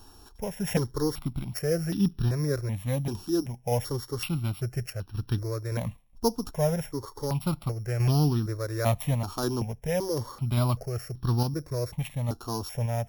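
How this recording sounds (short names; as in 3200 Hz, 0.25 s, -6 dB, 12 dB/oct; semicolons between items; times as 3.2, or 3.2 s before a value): a buzz of ramps at a fixed pitch in blocks of 8 samples; random-step tremolo 3.5 Hz; notches that jump at a steady rate 2.6 Hz 560–2100 Hz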